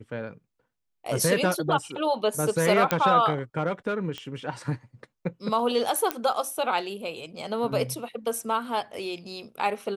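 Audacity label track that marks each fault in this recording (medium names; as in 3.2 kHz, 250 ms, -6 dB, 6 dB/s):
2.910000	2.910000	pop -7 dBFS
4.180000	4.180000	pop -21 dBFS
6.110000	6.110000	pop -9 dBFS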